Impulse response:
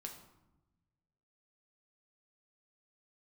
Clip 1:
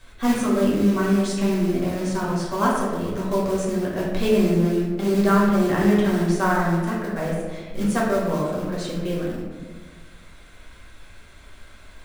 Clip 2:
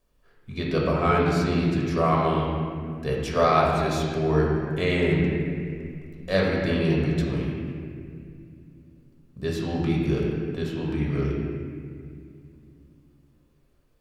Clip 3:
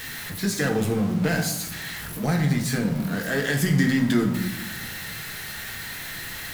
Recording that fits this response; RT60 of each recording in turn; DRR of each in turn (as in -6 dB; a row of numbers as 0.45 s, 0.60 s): 3; 1.5 s, 2.3 s, 1.0 s; -6.0 dB, -3.5 dB, 2.0 dB